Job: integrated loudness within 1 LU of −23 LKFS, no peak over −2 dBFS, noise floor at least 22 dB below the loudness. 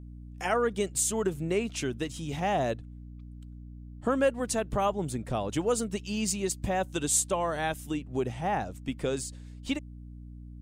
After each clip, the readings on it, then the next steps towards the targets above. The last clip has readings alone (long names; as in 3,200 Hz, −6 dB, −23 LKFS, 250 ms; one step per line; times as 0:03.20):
mains hum 60 Hz; hum harmonics up to 300 Hz; level of the hum −42 dBFS; integrated loudness −30.0 LKFS; sample peak −13.5 dBFS; target loudness −23.0 LKFS
→ hum removal 60 Hz, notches 5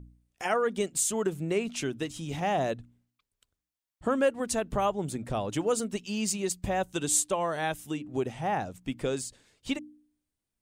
mains hum none found; integrated loudness −30.5 LKFS; sample peak −14.0 dBFS; target loudness −23.0 LKFS
→ level +7.5 dB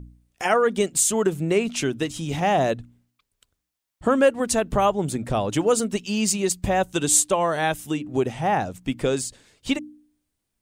integrated loudness −23.0 LKFS; sample peak −6.5 dBFS; background noise floor −80 dBFS